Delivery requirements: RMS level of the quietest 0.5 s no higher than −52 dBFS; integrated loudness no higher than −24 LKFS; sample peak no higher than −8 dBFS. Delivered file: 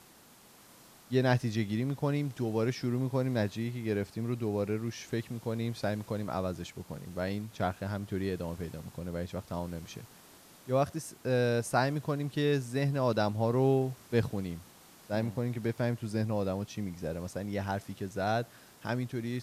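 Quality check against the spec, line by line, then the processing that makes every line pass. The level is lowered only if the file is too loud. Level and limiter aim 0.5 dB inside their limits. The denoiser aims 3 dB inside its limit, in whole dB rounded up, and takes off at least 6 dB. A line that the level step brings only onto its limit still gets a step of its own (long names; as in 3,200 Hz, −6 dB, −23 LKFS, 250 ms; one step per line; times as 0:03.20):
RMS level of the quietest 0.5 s −57 dBFS: in spec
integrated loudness −33.0 LKFS: in spec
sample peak −14.5 dBFS: in spec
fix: no processing needed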